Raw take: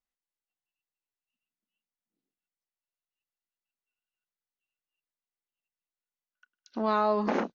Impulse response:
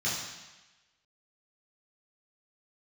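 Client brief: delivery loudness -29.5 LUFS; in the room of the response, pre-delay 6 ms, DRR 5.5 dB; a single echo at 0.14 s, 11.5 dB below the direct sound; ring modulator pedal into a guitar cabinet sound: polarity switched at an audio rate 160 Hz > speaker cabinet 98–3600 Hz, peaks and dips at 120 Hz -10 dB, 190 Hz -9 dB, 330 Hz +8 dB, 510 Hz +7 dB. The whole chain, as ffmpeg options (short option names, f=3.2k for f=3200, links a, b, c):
-filter_complex "[0:a]aecho=1:1:140:0.266,asplit=2[a][b];[1:a]atrim=start_sample=2205,adelay=6[c];[b][c]afir=irnorm=-1:irlink=0,volume=-14dB[d];[a][d]amix=inputs=2:normalize=0,aeval=exprs='val(0)*sgn(sin(2*PI*160*n/s))':c=same,highpass=98,equalizer=f=120:t=q:w=4:g=-10,equalizer=f=190:t=q:w=4:g=-9,equalizer=f=330:t=q:w=4:g=8,equalizer=f=510:t=q:w=4:g=7,lowpass=f=3.6k:w=0.5412,lowpass=f=3.6k:w=1.3066,volume=-4.5dB"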